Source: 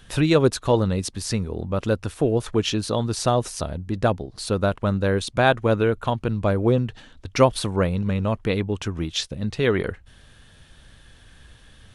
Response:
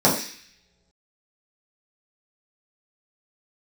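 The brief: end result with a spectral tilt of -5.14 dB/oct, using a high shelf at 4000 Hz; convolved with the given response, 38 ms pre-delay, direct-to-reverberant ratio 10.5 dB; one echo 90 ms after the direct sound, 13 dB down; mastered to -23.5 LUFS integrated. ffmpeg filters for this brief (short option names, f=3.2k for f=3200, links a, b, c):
-filter_complex "[0:a]highshelf=f=4k:g=6,aecho=1:1:90:0.224,asplit=2[a][b];[1:a]atrim=start_sample=2205,adelay=38[c];[b][c]afir=irnorm=-1:irlink=0,volume=-30.5dB[d];[a][d]amix=inputs=2:normalize=0,volume=-2dB"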